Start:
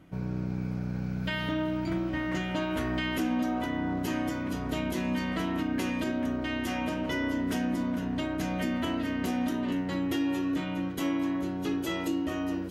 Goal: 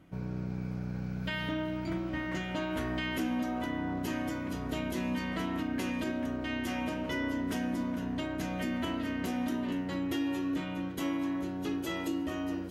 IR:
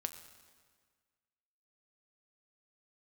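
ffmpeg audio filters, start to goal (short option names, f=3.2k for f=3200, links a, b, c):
-filter_complex "[0:a]asplit=2[a][b];[1:a]atrim=start_sample=2205,asetrate=38808,aresample=44100[c];[b][c]afir=irnorm=-1:irlink=0,volume=-2.5dB[d];[a][d]amix=inputs=2:normalize=0,volume=-7.5dB"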